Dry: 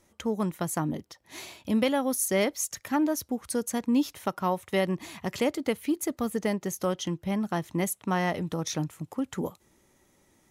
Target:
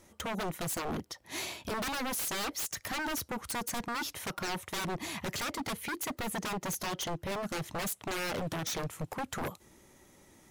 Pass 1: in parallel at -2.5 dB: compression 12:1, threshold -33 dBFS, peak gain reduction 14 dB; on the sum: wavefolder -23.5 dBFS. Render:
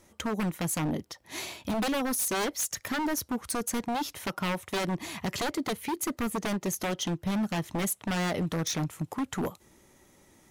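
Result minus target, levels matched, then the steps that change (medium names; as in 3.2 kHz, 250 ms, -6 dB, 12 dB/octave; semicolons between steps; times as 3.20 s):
wavefolder: distortion -18 dB
change: wavefolder -29.5 dBFS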